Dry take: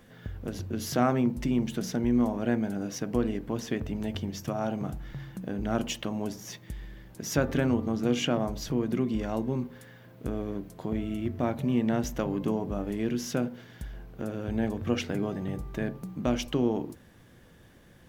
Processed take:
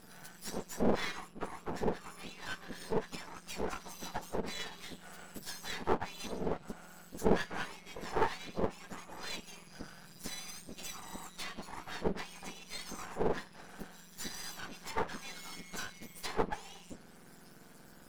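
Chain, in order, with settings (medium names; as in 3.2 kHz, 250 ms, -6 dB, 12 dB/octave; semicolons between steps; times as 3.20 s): spectrum inverted on a logarithmic axis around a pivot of 1.6 kHz; low-pass that closes with the level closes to 1.6 kHz, closed at -31.5 dBFS; half-wave rectifier; trim +7 dB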